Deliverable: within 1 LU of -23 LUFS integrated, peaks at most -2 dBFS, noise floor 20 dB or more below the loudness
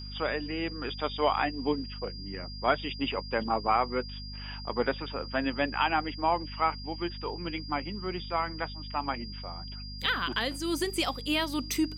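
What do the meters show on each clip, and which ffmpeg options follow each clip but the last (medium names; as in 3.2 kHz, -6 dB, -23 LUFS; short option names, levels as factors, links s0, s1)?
hum 50 Hz; highest harmonic 250 Hz; hum level -39 dBFS; steady tone 4.8 kHz; tone level -43 dBFS; loudness -31.0 LUFS; peak level -11.5 dBFS; loudness target -23.0 LUFS
-> -af "bandreject=f=50:t=h:w=4,bandreject=f=100:t=h:w=4,bandreject=f=150:t=h:w=4,bandreject=f=200:t=h:w=4,bandreject=f=250:t=h:w=4"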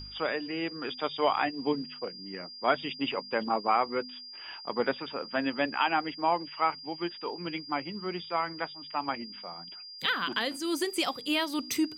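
hum not found; steady tone 4.8 kHz; tone level -43 dBFS
-> -af "bandreject=f=4800:w=30"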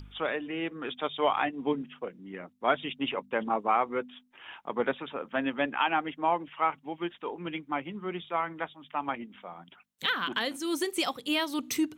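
steady tone not found; loudness -31.5 LUFS; peak level -11.0 dBFS; loudness target -23.0 LUFS
-> -af "volume=2.66"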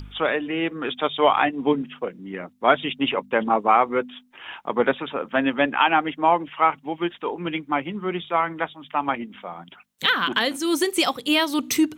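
loudness -23.0 LUFS; peak level -2.5 dBFS; noise floor -52 dBFS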